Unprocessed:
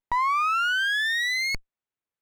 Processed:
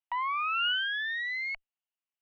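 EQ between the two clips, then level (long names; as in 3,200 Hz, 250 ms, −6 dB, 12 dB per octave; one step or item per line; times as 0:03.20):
elliptic high-pass filter 670 Hz, stop band 40 dB
low-pass with resonance 2,900 Hz, resonance Q 8.9
spectral tilt −4 dB per octave
−8.0 dB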